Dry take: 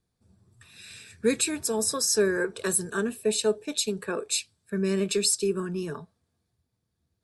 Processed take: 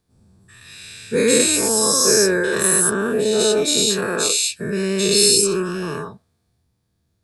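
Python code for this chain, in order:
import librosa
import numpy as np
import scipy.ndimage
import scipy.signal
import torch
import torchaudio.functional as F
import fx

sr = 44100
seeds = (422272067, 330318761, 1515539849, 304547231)

y = fx.spec_dilate(x, sr, span_ms=240)
y = fx.high_shelf(y, sr, hz=3000.0, db=-9.5, at=(2.89, 3.39), fade=0.02)
y = y * 10.0 ** (2.0 / 20.0)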